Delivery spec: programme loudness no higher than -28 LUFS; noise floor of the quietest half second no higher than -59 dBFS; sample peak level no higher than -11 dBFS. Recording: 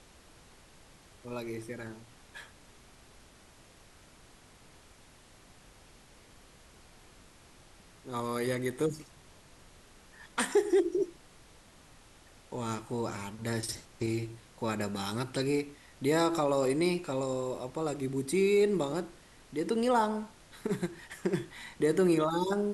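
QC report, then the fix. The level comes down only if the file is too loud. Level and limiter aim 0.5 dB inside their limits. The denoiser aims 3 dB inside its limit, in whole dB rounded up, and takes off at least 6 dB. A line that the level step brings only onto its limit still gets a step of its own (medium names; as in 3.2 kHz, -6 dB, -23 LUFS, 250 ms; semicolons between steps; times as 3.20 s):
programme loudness -32.0 LUFS: pass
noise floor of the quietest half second -57 dBFS: fail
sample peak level -15.0 dBFS: pass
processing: noise reduction 6 dB, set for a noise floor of -57 dBFS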